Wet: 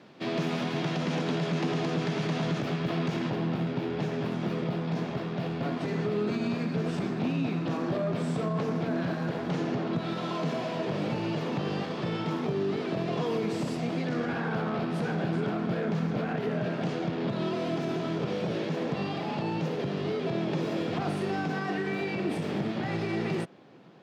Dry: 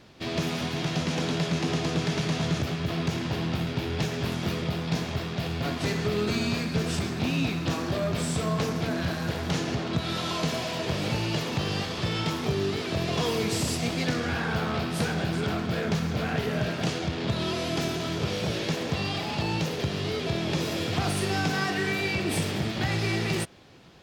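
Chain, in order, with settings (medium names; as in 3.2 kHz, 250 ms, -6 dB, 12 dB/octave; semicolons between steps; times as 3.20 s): high-pass 150 Hz 24 dB/octave; peak limiter -21 dBFS, peak gain reduction 6.5 dB; low-pass 2 kHz 6 dB/octave, from 3.30 s 1 kHz; trim +2 dB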